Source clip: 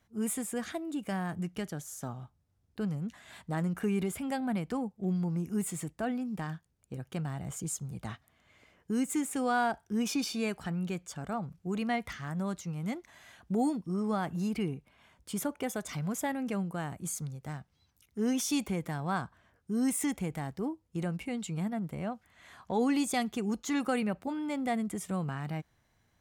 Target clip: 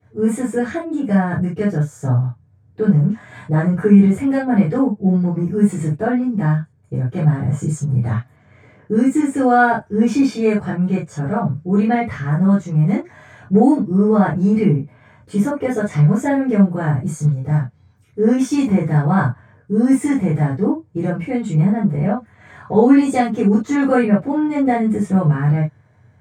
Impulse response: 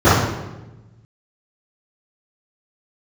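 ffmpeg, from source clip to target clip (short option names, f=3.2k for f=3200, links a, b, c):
-filter_complex "[1:a]atrim=start_sample=2205,afade=t=out:st=0.15:d=0.01,atrim=end_sample=7056,asetrate=57330,aresample=44100[a];[0:a][a]afir=irnorm=-1:irlink=0,volume=-14.5dB"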